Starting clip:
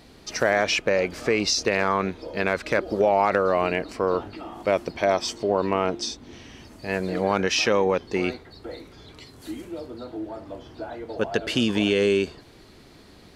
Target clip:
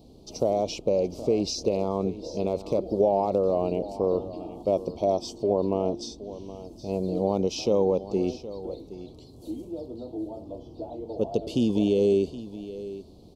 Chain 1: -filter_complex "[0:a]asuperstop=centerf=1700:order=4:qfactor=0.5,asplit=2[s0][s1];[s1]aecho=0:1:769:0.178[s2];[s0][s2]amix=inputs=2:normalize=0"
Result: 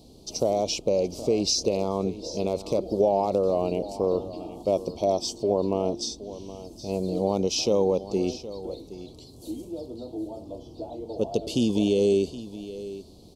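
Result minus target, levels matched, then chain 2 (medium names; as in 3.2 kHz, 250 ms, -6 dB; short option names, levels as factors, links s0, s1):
8 kHz band +8.0 dB
-filter_complex "[0:a]asuperstop=centerf=1700:order=4:qfactor=0.5,equalizer=f=9000:w=0.34:g=-9.5,asplit=2[s0][s1];[s1]aecho=0:1:769:0.178[s2];[s0][s2]amix=inputs=2:normalize=0"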